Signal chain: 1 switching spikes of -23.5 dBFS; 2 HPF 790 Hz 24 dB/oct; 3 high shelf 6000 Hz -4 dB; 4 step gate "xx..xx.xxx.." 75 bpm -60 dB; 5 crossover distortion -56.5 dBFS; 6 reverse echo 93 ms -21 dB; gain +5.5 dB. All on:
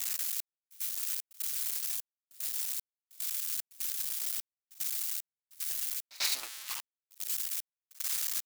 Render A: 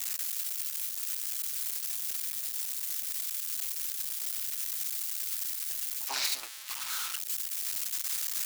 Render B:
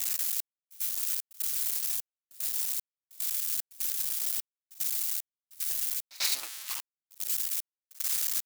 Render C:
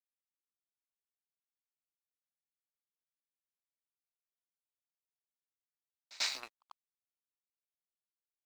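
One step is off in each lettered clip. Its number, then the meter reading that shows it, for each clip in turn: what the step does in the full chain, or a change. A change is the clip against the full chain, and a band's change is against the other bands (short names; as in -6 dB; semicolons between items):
4, crest factor change -2.0 dB; 3, 8 kHz band +2.0 dB; 1, distortion 0 dB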